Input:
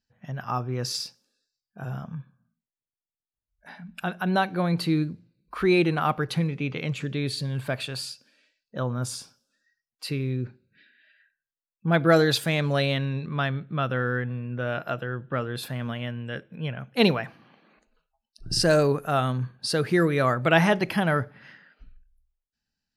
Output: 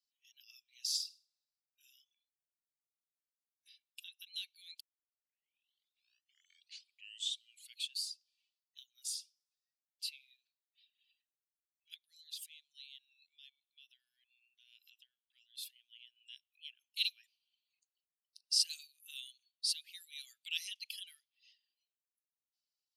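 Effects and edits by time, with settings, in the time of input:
0.70–1.95 s: flutter echo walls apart 8.7 m, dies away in 0.37 s
4.80 s: tape start 3.13 s
11.94–16.16 s: compression 16:1, threshold -34 dBFS
whole clip: reverb removal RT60 1 s; steep high-pass 2.9 kHz 48 dB/octave; trim -4 dB

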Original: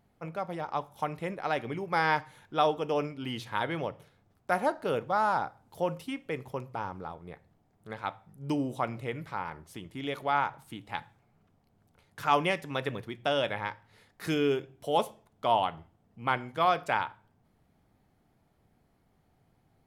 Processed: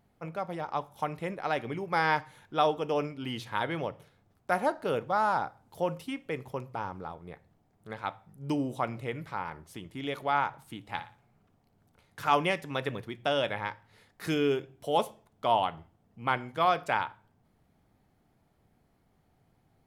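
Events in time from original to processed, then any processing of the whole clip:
10.83–12.35 s: flutter echo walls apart 9.9 m, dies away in 0.32 s

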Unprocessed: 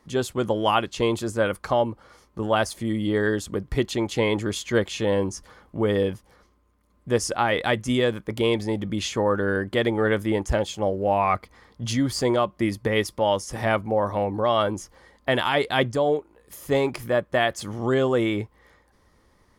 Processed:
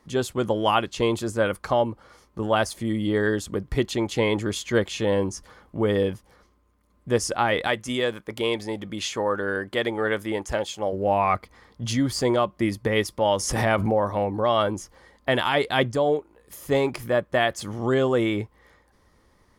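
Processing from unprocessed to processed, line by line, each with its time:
7.67–10.93 s: bass shelf 290 Hz -10 dB
13.25–14.11 s: swell ahead of each attack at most 36 dB/s

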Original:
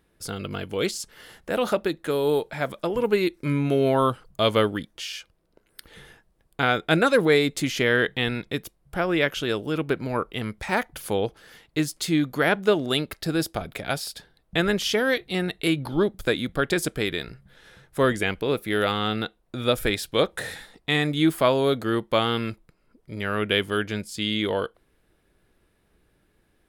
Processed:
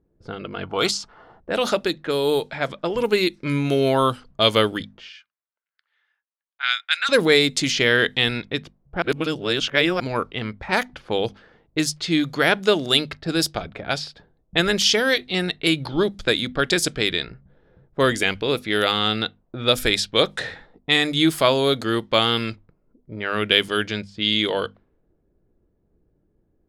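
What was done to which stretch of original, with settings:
0.63–1.40 s: time-frequency box 640–1500 Hz +10 dB
5.09–7.09 s: high-pass 1.5 kHz 24 dB/octave
9.02–10.00 s: reverse
whole clip: level-controlled noise filter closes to 450 Hz, open at -20 dBFS; peaking EQ 5.1 kHz +10 dB 1.8 oct; hum notches 50/100/150/200/250 Hz; trim +1.5 dB

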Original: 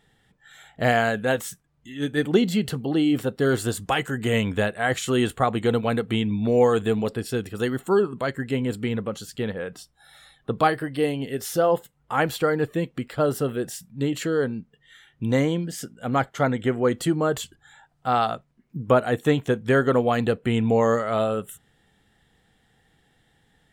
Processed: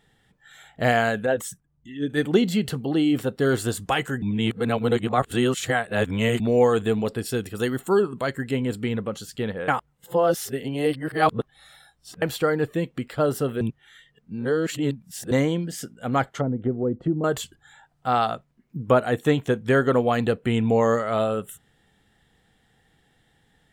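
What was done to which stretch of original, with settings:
1.26–2.10 s: resonances exaggerated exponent 1.5
4.22–6.40 s: reverse
7.16–8.51 s: treble shelf 6 kHz +5.5 dB
9.68–12.22 s: reverse
13.61–15.31 s: reverse
16.28–17.24 s: low-pass that closes with the level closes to 390 Hz, closed at -20 dBFS

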